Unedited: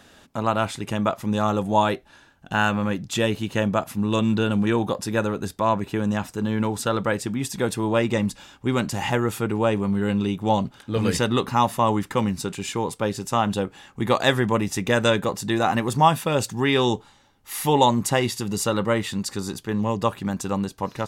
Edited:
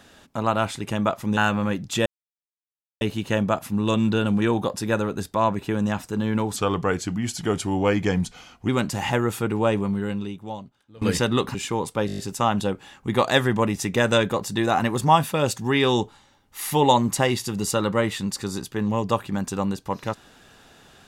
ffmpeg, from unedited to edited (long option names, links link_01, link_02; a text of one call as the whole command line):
ffmpeg -i in.wav -filter_complex "[0:a]asplit=13[link_01][link_02][link_03][link_04][link_05][link_06][link_07][link_08][link_09][link_10][link_11][link_12][link_13];[link_01]atrim=end=1.372[link_14];[link_02]atrim=start=2.568:end=3.26,asetpts=PTS-STARTPTS,afade=type=out:start_time=0.688:duration=0.004:curve=hsin,apad=pad_dur=0.95[link_15];[link_03]atrim=start=3.26:end=6.814,asetpts=PTS-STARTPTS,afade=type=in:duration=0.004:curve=hsin[link_16];[link_04]atrim=start=6.81:end=8.68,asetpts=PTS-STARTPTS,asetrate=38808,aresample=44100,atrim=end_sample=93712,asetpts=PTS-STARTPTS[link_17];[link_05]atrim=start=8.676:end=11.01,asetpts=PTS-STARTPTS,afade=type=out:start_time=1.104:duration=1.23:curve=qua:silence=0.0749894[link_18];[link_06]atrim=start=11.01:end=11.542,asetpts=PTS-STARTPTS,afade=type=in:duration=0.004:curve=hsin:silence=0.0749894[link_19];[link_07]atrim=start=12.588:end=13.132[link_20];[link_08]atrim=start=13.108:end=13.132[link_21];[link_09]atrim=start=13.108:end=13.132[link_22];[link_10]atrim=start=13.108:end=13.132[link_23];[link_11]atrim=start=13.108:end=13.132[link_24];[link_12]atrim=start=13.108:end=13.132[link_25];[link_13]atrim=start=13.108[link_26];[link_15][link_16]concat=n=2:v=0:a=1[link_27];[link_14][link_27]acrossfade=duration=0.004:curve1=hsin:curve2=hsin[link_28];[link_28][link_17]acrossfade=duration=0.004:curve1=hsin:curve2=hsin[link_29];[link_18][link_19]concat=n=2:v=0:a=1[link_30];[link_29][link_30]acrossfade=duration=0.004:curve1=hsin:curve2=hsin[link_31];[link_31][link_20]acrossfade=duration=0.004:curve1=hsin:curve2=hsin[link_32];[link_32][link_21]acrossfade=duration=0.004:curve1=hsin:curve2=hsin[link_33];[link_33][link_22]acrossfade=duration=0.004:curve1=hsin:curve2=hsin[link_34];[link_34][link_23]acrossfade=duration=0.004:curve1=hsin:curve2=hsin[link_35];[link_35][link_24]acrossfade=duration=0.004:curve1=hsin:curve2=hsin[link_36];[link_36][link_25]acrossfade=duration=0.004:curve1=hsin:curve2=hsin[link_37];[link_37][link_26]acrossfade=duration=0.004:curve1=hsin:curve2=hsin" out.wav